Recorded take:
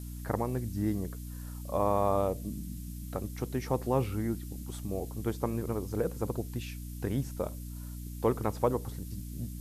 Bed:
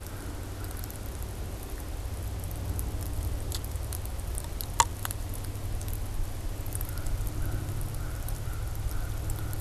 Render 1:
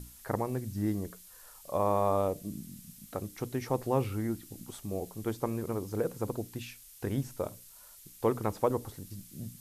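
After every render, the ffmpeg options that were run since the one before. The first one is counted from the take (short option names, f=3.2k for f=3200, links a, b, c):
-af "bandreject=f=60:t=h:w=6,bandreject=f=120:t=h:w=6,bandreject=f=180:t=h:w=6,bandreject=f=240:t=h:w=6,bandreject=f=300:t=h:w=6"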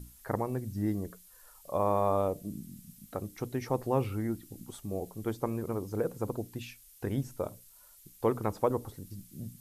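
-af "afftdn=nr=6:nf=-54"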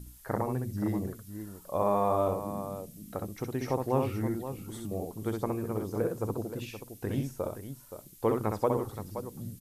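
-af "aecho=1:1:64|523:0.596|0.299"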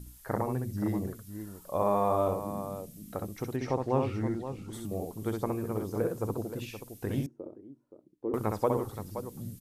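-filter_complex "[0:a]asettb=1/sr,asplit=3[a][b][c];[a]atrim=end=3.564[d];[b]atrim=start=3.56:end=4.73,asetpts=PTS-STARTPTS,afade=t=in:d=0.004:c=qsin,afade=t=out:st=1.166:d=0.004:c=qsin,lowpass=6k[e];[c]atrim=start=4.726[f];[d][e]acrossfade=d=0.004:c1=hsin:c2=qsin[g];[g][f]acrossfade=d=0.004:c1=qsin:c2=hsin,asettb=1/sr,asplit=3[h][i][j];[h]atrim=end=7.264[k];[i]atrim=start=7.26:end=8.34,asetpts=PTS-STARTPTS,afade=t=in:d=0.004:c=qsin,afade=t=out:st=1.076:d=0.004:c=qsin,bandpass=f=320:t=q:w=3.5[l];[j]atrim=start=8.336[m];[k][l]acrossfade=d=0.004:c1=hsin:c2=qsin[n];[n][m]acrossfade=d=0.004:c1=qsin:c2=hsin"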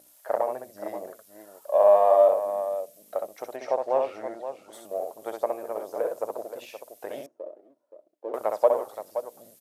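-af "aeval=exprs='if(lt(val(0),0),0.708*val(0),val(0))':c=same,highpass=f=610:t=q:w=5.9"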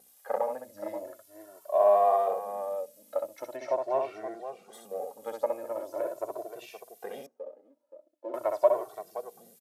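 -filter_complex "[0:a]asplit=2[a][b];[b]adelay=2.1,afreqshift=0.42[c];[a][c]amix=inputs=2:normalize=1"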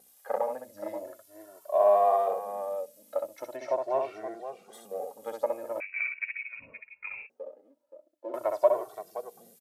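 -filter_complex "[0:a]asettb=1/sr,asplit=3[a][b][c];[a]atrim=end=5.804[d];[b]atrim=start=5.8:end=7.3,asetpts=PTS-STARTPTS,afade=t=in:d=0.004:c=qsin,afade=t=out:st=1.496:d=0.004:c=qsin,lowpass=f=2.5k:t=q:w=0.5098,lowpass=f=2.5k:t=q:w=0.6013,lowpass=f=2.5k:t=q:w=0.9,lowpass=f=2.5k:t=q:w=2.563,afreqshift=-2900[e];[c]atrim=start=7.296[f];[d][e]acrossfade=d=0.004:c1=hsin:c2=qsin[g];[g][f]acrossfade=d=0.004:c1=qsin:c2=hsin"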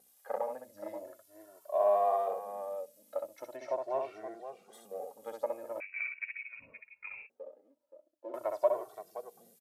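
-af "volume=-5.5dB"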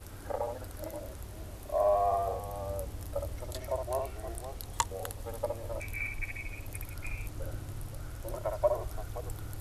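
-filter_complex "[1:a]volume=-7.5dB[a];[0:a][a]amix=inputs=2:normalize=0"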